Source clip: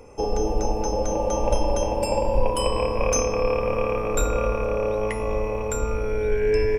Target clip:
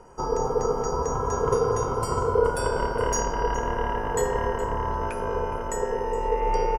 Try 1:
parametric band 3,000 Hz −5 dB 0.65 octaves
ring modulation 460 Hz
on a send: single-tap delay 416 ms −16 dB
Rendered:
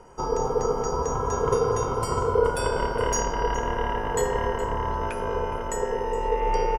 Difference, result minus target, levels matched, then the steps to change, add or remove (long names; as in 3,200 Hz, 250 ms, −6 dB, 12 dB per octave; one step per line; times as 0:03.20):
4,000 Hz band +2.5 dB
change: parametric band 3,000 Hz −12 dB 0.65 octaves